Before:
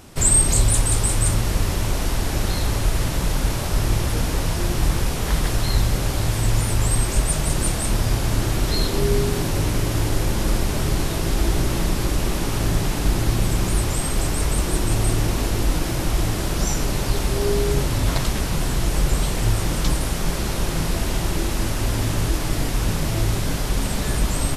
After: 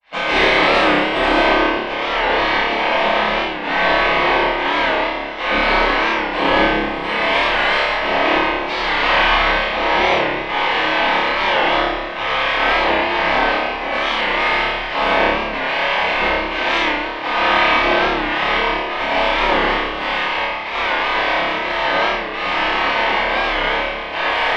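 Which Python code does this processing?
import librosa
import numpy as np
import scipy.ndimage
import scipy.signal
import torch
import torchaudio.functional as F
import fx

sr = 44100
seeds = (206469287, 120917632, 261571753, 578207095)

y = fx.halfwave_hold(x, sr)
y = fx.step_gate(y, sr, bpm=79, pattern='.xxxx.xx.', floor_db=-12.0, edge_ms=4.5)
y = fx.hum_notches(y, sr, base_hz=50, count=7)
y = fx.granulator(y, sr, seeds[0], grain_ms=100.0, per_s=20.0, spray_ms=100.0, spread_st=0)
y = scipy.signal.sosfilt(scipy.signal.butter(4, 66.0, 'highpass', fs=sr, output='sos'), y)
y = fx.spec_gate(y, sr, threshold_db=-15, keep='weak')
y = scipy.signal.sosfilt(scipy.signal.butter(4, 3200.0, 'lowpass', fs=sr, output='sos'), y)
y = fx.low_shelf(y, sr, hz=290.0, db=-7.5)
y = fx.notch(y, sr, hz=1400.0, q=5.9)
y = fx.room_flutter(y, sr, wall_m=4.9, rt60_s=0.8)
y = fx.room_shoebox(y, sr, seeds[1], volume_m3=680.0, walls='mixed', distance_m=7.3)
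y = fx.record_warp(y, sr, rpm=45.0, depth_cents=100.0)
y = y * 10.0 ** (-1.5 / 20.0)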